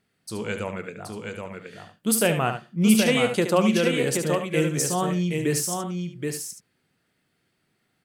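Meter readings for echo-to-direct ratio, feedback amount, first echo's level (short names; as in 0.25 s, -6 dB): -3.0 dB, no steady repeat, -8.5 dB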